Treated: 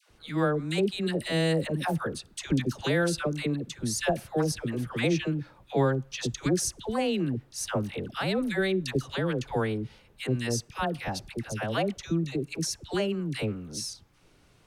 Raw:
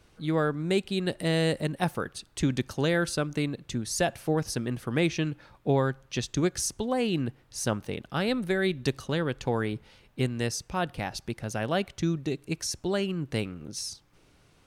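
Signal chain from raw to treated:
all-pass dispersion lows, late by 97 ms, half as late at 780 Hz

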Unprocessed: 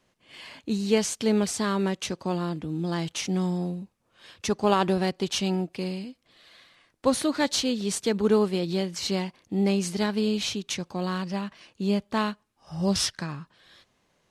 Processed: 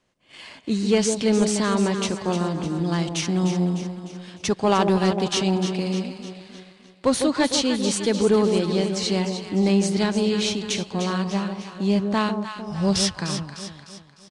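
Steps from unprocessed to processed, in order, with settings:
delay that swaps between a low-pass and a high-pass 151 ms, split 870 Hz, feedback 71%, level −6 dB
leveller curve on the samples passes 1
downsampling to 22,050 Hz

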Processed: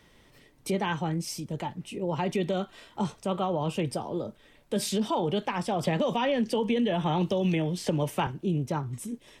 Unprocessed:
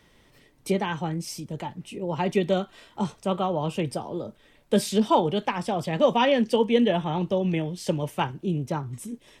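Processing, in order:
brickwall limiter −19 dBFS, peak gain reduction 10.5 dB
0:05.83–0:08.27: multiband upward and downward compressor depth 100%

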